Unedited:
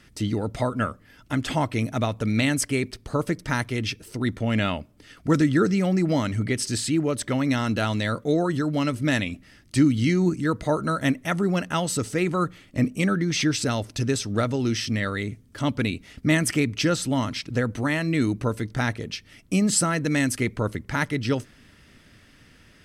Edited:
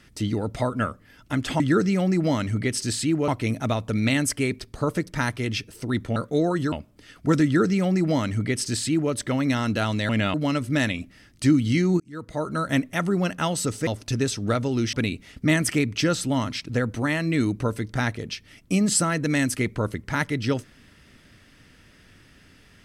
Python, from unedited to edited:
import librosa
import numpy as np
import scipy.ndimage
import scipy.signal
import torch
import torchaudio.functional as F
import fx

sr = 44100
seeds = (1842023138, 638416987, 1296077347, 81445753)

y = fx.edit(x, sr, fx.swap(start_s=4.48, length_s=0.25, other_s=8.1, other_length_s=0.56),
    fx.duplicate(start_s=5.45, length_s=1.68, to_s=1.6),
    fx.fade_in_span(start_s=10.32, length_s=0.69),
    fx.cut(start_s=12.19, length_s=1.56),
    fx.cut(start_s=14.81, length_s=0.93), tone=tone)